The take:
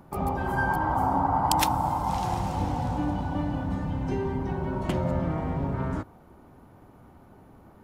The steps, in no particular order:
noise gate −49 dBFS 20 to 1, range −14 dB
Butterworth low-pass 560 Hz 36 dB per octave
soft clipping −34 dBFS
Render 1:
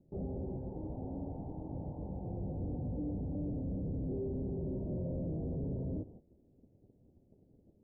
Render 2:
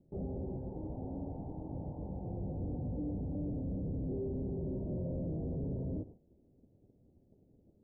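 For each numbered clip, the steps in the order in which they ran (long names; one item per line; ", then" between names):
noise gate, then soft clipping, then Butterworth low-pass
soft clipping, then noise gate, then Butterworth low-pass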